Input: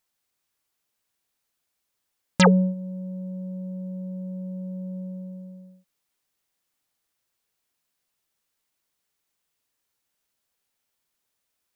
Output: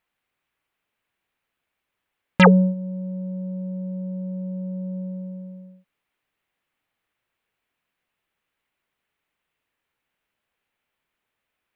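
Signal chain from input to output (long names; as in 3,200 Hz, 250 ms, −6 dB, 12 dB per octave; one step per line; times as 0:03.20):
high shelf with overshoot 3,700 Hz −12.5 dB, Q 1.5
level +3.5 dB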